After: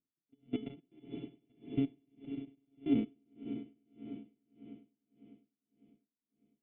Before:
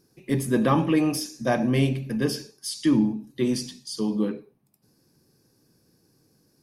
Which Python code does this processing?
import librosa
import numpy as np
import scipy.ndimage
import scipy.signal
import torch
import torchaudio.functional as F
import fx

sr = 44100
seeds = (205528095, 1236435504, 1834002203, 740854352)

y = np.r_[np.sort(x[:len(x) // 64 * 64].reshape(-1, 64), axis=1).ravel(), x[len(x) // 64 * 64:]]
y = fx.high_shelf(y, sr, hz=2300.0, db=-6.5)
y = fx.level_steps(y, sr, step_db=21)
y = fx.formant_cascade(y, sr, vowel='i')
y = fx.comb_fb(y, sr, f0_hz=430.0, decay_s=0.27, harmonics='all', damping=0.0, mix_pct=80)
y = fx.echo_swell(y, sr, ms=100, loudest=5, wet_db=-14.0)
y = y * 10.0 ** (-35 * (0.5 - 0.5 * np.cos(2.0 * np.pi * 1.7 * np.arange(len(y)) / sr)) / 20.0)
y = y * 10.0 ** (13.5 / 20.0)